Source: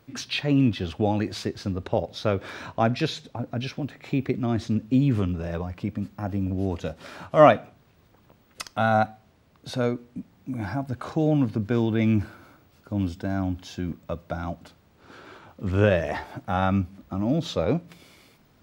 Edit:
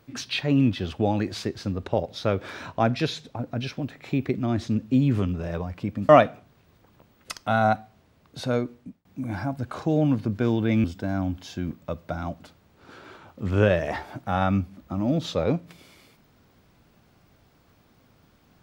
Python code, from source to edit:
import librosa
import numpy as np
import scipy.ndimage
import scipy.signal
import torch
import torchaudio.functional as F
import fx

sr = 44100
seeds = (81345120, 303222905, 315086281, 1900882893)

y = fx.edit(x, sr, fx.cut(start_s=6.09, length_s=1.3),
    fx.fade_out_span(start_s=10.03, length_s=0.32),
    fx.cut(start_s=12.14, length_s=0.91), tone=tone)